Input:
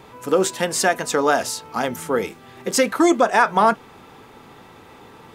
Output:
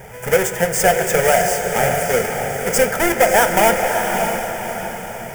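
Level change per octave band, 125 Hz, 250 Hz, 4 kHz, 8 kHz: +8.5 dB, -2.5 dB, +2.5 dB, +5.5 dB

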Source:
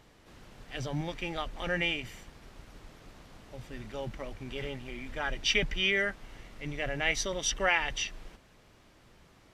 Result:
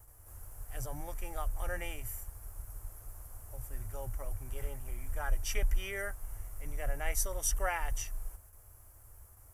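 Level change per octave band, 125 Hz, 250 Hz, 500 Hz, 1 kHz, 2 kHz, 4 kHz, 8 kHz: -1.0 dB, -13.5 dB, -7.5 dB, -4.5 dB, -11.0 dB, -15.5 dB, -0.5 dB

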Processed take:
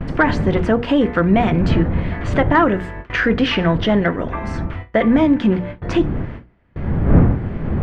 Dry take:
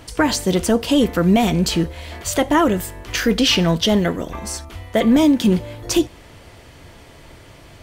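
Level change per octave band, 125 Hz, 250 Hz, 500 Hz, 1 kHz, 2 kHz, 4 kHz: +6.0 dB, +0.5 dB, +1.5 dB, +3.0 dB, +4.5 dB, -7.0 dB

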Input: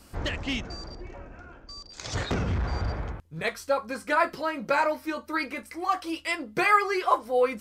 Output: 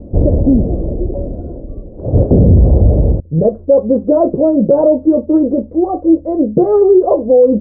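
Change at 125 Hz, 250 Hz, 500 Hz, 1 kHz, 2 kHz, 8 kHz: +21.5 dB, +22.5 dB, +19.0 dB, +2.0 dB, under -25 dB, under -35 dB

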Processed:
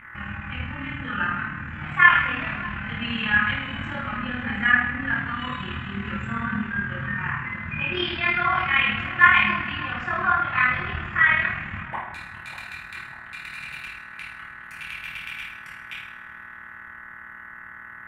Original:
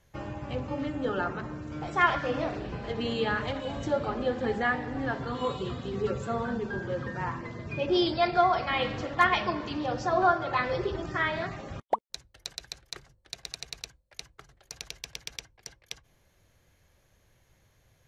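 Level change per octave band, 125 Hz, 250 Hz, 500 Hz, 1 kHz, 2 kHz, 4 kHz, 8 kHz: +4.0 dB, +1.0 dB, -10.5 dB, +3.5 dB, +13.0 dB, +4.5 dB, under -10 dB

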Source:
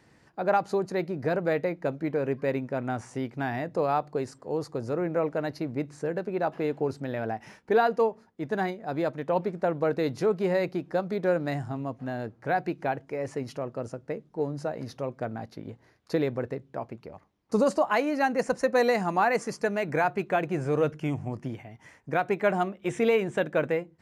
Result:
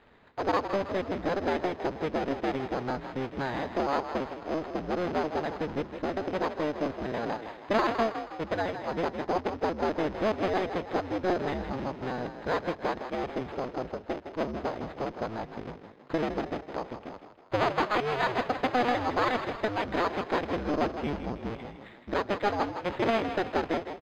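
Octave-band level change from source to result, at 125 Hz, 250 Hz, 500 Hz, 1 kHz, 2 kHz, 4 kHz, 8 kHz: -5.0 dB, -1.5 dB, -3.5 dB, 0.0 dB, -1.5 dB, +4.5 dB, no reading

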